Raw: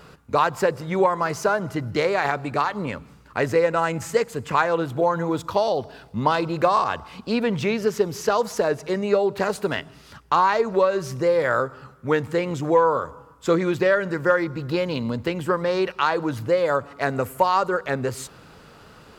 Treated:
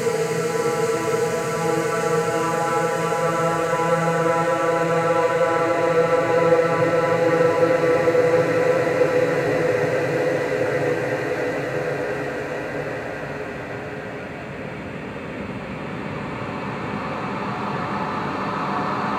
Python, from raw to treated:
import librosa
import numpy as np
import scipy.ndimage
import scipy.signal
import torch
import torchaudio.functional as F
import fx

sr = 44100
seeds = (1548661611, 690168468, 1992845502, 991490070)

y = np.flip(x).copy()
y = fx.paulstretch(y, sr, seeds[0], factor=14.0, window_s=1.0, from_s=15.06)
y = F.gain(torch.from_numpy(y), 2.0).numpy()